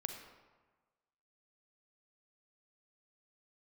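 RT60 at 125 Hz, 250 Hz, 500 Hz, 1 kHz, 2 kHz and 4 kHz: 1.4, 1.3, 1.3, 1.4, 1.1, 0.80 s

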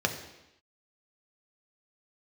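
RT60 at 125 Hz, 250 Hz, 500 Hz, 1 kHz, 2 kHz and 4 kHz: 0.85, 0.90, 0.90, 0.90, 0.95, 0.95 s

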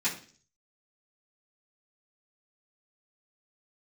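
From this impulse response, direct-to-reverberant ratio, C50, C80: -11.0 dB, 10.0 dB, 14.5 dB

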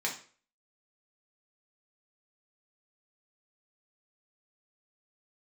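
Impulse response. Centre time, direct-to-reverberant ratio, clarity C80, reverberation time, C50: 20 ms, -2.5 dB, 14.0 dB, 0.45 s, 9.0 dB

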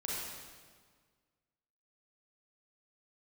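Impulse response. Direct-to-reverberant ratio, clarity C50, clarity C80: -6.0 dB, -3.5 dB, -0.5 dB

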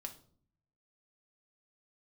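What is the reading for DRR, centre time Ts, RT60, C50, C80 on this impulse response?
3.5 dB, 9 ms, 0.55 s, 13.0 dB, 18.0 dB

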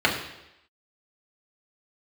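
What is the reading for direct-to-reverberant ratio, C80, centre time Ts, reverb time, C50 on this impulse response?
-3.0 dB, 8.5 dB, 30 ms, 0.85 s, 6.5 dB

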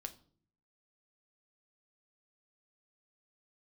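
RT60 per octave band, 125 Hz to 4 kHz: 0.85, 0.75, 0.60, 0.45, 0.35, 0.40 s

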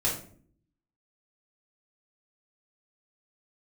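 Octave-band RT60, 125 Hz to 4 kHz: 0.90, 0.85, 0.60, 0.45, 0.40, 0.30 s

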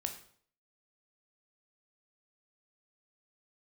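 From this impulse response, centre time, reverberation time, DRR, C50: 15 ms, 0.55 s, 4.5 dB, 9.5 dB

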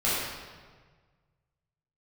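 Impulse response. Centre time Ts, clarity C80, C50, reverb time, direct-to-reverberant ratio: 0.104 s, 0.5 dB, -2.5 dB, 1.5 s, -10.5 dB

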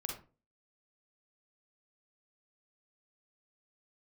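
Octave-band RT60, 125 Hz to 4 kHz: 0.45, 0.40, 0.40, 0.30, 0.25, 0.20 s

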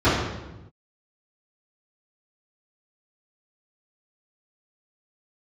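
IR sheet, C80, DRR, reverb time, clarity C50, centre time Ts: 4.0 dB, -14.5 dB, 1.0 s, 1.0 dB, 69 ms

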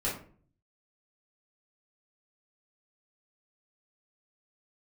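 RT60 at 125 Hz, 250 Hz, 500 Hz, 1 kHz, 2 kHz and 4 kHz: 0.85, 0.65, 0.50, 0.40, 0.35, 0.25 s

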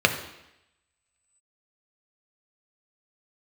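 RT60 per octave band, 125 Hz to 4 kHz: 0.75, 0.85, 0.85, 0.85, 0.95, 0.90 s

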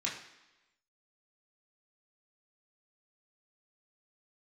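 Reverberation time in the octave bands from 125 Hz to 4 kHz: 0.85, 0.95, 1.0, 1.0, 1.1, 1.0 s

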